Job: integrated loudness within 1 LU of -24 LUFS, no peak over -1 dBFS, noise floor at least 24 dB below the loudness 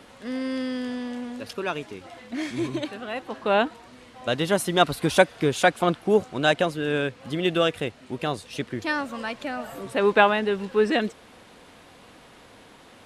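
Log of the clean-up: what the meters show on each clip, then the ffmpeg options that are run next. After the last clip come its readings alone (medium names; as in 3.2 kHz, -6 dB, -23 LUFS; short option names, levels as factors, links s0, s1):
loudness -25.0 LUFS; peak level -4.0 dBFS; loudness target -24.0 LUFS
-> -af "volume=1.12"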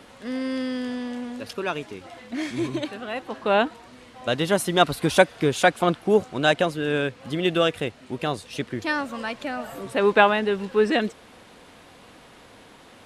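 loudness -24.0 LUFS; peak level -3.0 dBFS; noise floor -50 dBFS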